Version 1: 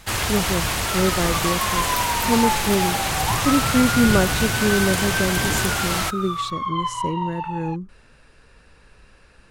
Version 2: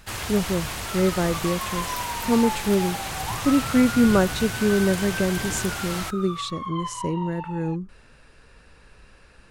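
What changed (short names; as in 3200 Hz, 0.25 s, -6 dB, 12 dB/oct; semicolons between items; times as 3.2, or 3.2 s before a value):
first sound -8.0 dB; second sound -7.0 dB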